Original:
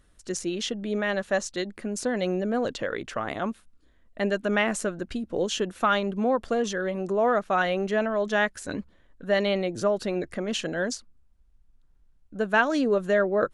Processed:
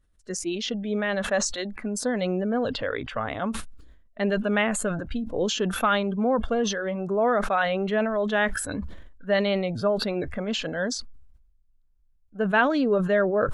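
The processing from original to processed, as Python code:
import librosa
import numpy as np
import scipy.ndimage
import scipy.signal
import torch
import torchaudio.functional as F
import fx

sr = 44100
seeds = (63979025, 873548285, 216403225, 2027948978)

y = fx.noise_reduce_blind(x, sr, reduce_db=15)
y = fx.low_shelf(y, sr, hz=96.0, db=10.0)
y = fx.sustainer(y, sr, db_per_s=54.0)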